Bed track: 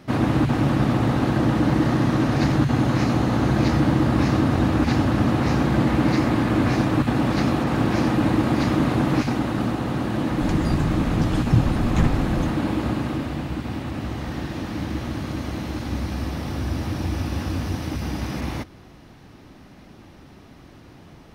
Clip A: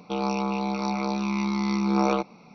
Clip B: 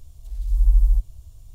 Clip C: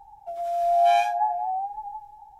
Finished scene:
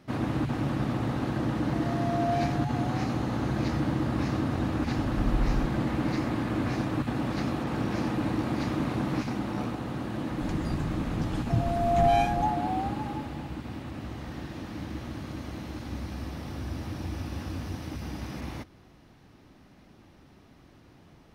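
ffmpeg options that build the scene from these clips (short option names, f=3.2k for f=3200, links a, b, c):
-filter_complex "[3:a]asplit=2[a][b];[0:a]volume=-9dB[c];[a]aecho=1:1:4.3:0.65,atrim=end=2.39,asetpts=PTS-STARTPTS,volume=-14.5dB,afade=t=in:d=0.004:c=hsin,afade=t=out:st=2.386:d=0.004:c=hsin,adelay=1450[d];[2:a]atrim=end=1.54,asetpts=PTS-STARTPTS,volume=-12dB,afade=t=in:d=0.004:c=hsin,afade=t=out:st=1.536:d=0.004:c=hsin,adelay=4660[e];[1:a]atrim=end=2.54,asetpts=PTS-STARTPTS,volume=-17dB,afade=t=in:d=0.004:c=hsin,afade=t=out:st=2.536:d=0.004:c=hsin,adelay=332514S[f];[b]atrim=end=2.39,asetpts=PTS-STARTPTS,volume=-4dB,afade=t=in:d=0.004:c=hsin,afade=t=out:st=2.386:d=0.004:c=hsin,adelay=494802S[g];[c][d][e][f][g]amix=inputs=5:normalize=0"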